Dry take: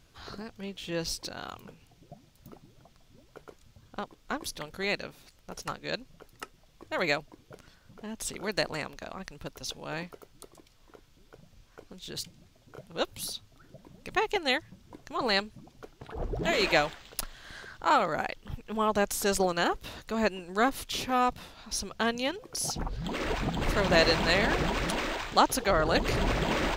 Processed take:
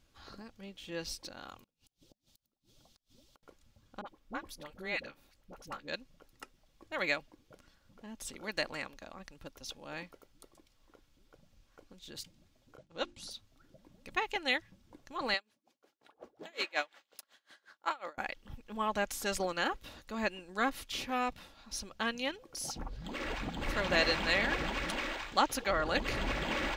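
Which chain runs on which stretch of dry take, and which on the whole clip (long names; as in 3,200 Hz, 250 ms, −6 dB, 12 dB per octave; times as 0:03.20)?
0:01.63–0:03.43: high shelf with overshoot 2,700 Hz +8 dB, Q 1.5 + gate with flip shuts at −39 dBFS, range −32 dB
0:04.01–0:05.88: parametric band 6,700 Hz −5.5 dB 2.3 octaves + all-pass dispersion highs, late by 48 ms, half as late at 680 Hz
0:12.77–0:13.31: low-pass filter 8,300 Hz 24 dB per octave + downward expander −47 dBFS + mains-hum notches 50/100/150/200/250/300/350 Hz
0:15.34–0:18.18: high-pass filter 350 Hz + tremolo with a sine in dB 5.5 Hz, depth 27 dB
whole clip: dynamic equaliser 2,200 Hz, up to +6 dB, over −40 dBFS, Q 0.75; comb filter 3.6 ms, depth 32%; level −8.5 dB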